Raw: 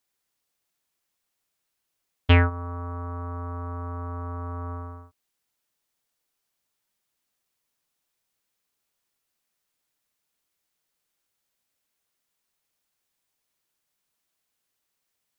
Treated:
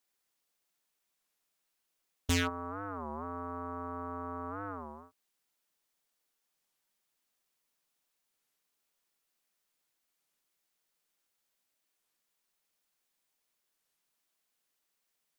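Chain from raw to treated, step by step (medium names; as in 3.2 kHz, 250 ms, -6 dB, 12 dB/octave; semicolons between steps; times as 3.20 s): peaking EQ 81 Hz -15 dB 0.88 oct; wavefolder -19.5 dBFS; warped record 33 1/3 rpm, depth 250 cents; trim -2 dB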